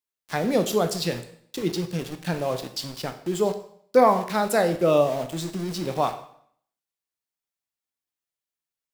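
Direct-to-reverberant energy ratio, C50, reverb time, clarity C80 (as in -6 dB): 8.0 dB, 11.5 dB, 0.60 s, 14.5 dB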